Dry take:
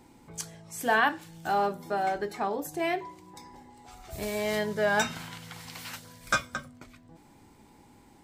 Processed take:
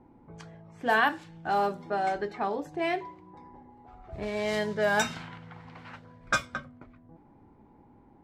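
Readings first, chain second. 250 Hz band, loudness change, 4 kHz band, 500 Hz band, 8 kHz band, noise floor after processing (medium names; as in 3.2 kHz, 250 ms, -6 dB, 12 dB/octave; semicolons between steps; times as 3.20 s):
0.0 dB, +0.5 dB, -1.0 dB, 0.0 dB, -4.0 dB, -58 dBFS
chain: level-controlled noise filter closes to 1 kHz, open at -22 dBFS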